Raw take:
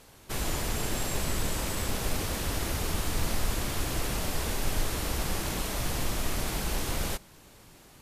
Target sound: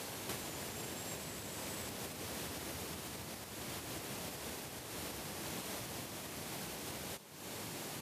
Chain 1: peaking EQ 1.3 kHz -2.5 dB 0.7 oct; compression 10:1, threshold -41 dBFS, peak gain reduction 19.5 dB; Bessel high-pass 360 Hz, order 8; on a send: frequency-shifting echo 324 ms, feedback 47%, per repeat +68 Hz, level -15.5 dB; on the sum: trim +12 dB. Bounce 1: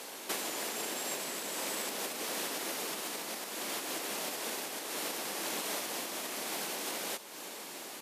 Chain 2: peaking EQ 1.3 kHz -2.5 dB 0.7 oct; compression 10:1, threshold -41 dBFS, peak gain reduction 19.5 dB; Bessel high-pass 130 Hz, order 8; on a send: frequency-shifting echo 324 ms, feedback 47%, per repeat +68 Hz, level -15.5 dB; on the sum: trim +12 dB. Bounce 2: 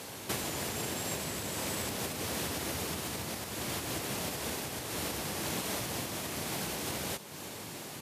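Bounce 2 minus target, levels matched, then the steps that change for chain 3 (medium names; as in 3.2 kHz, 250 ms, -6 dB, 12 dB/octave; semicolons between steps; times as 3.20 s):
compression: peak gain reduction -8 dB
change: compression 10:1, threshold -50 dBFS, peak gain reduction 28 dB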